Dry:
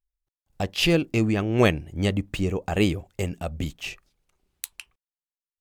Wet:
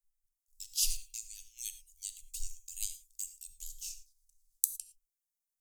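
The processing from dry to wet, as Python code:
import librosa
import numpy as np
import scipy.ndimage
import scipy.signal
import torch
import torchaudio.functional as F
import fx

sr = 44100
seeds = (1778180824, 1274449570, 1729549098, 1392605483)

p1 = scipy.signal.sosfilt(scipy.signal.cheby2(4, 80, [110.0, 1200.0], 'bandstop', fs=sr, output='sos'), x)
p2 = fx.level_steps(p1, sr, step_db=21)
p3 = p1 + (p2 * 10.0 ** (-1.5 / 20.0))
p4 = fx.rev_gated(p3, sr, seeds[0], gate_ms=130, shape='flat', drr_db=10.5)
y = p4 * 10.0 ** (4.0 / 20.0)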